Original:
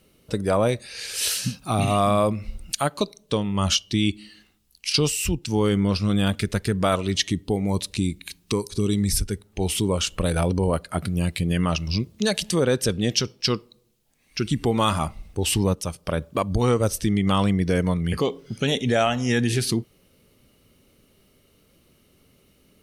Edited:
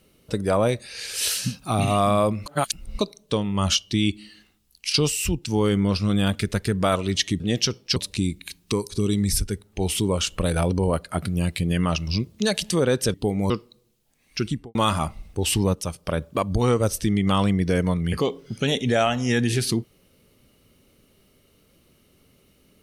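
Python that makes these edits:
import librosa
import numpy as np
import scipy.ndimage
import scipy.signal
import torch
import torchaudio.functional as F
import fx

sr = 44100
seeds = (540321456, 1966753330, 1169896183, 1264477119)

y = fx.studio_fade_out(x, sr, start_s=14.4, length_s=0.35)
y = fx.edit(y, sr, fx.reverse_span(start_s=2.46, length_s=0.53),
    fx.swap(start_s=7.4, length_s=0.36, other_s=12.94, other_length_s=0.56), tone=tone)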